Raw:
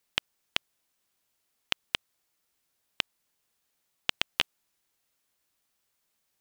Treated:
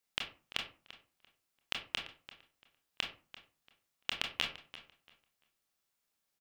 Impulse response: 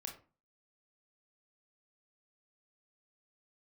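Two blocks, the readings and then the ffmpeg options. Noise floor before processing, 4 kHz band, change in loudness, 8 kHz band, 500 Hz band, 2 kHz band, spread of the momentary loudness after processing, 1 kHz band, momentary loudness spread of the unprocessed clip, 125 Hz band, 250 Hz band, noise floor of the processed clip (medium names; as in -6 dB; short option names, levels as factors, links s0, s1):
-78 dBFS, -6.0 dB, -6.0 dB, -6.0 dB, -5.5 dB, -5.5 dB, 21 LU, -5.0 dB, 5 LU, -5.0 dB, -5.0 dB, -84 dBFS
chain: -filter_complex "[0:a]asplit=2[s0][s1];[s1]adelay=341,lowpass=f=4400:p=1,volume=0.178,asplit=2[s2][s3];[s3]adelay=341,lowpass=f=4400:p=1,volume=0.24,asplit=2[s4][s5];[s5]adelay=341,lowpass=f=4400:p=1,volume=0.24[s6];[s0][s2][s4][s6]amix=inputs=4:normalize=0[s7];[1:a]atrim=start_sample=2205[s8];[s7][s8]afir=irnorm=-1:irlink=0,volume=0.75"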